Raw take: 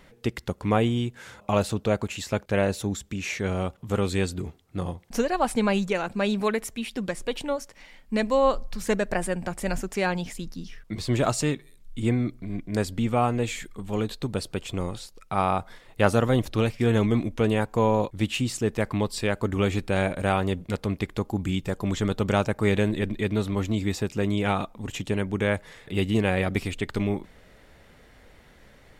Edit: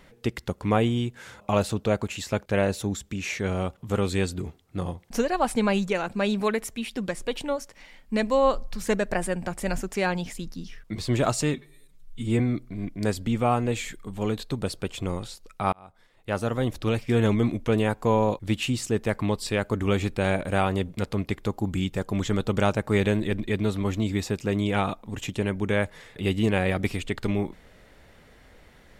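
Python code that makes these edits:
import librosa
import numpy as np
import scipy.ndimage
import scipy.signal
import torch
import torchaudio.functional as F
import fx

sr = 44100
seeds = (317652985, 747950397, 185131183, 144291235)

y = fx.edit(x, sr, fx.stretch_span(start_s=11.54, length_s=0.57, factor=1.5),
    fx.fade_in_span(start_s=15.44, length_s=1.41), tone=tone)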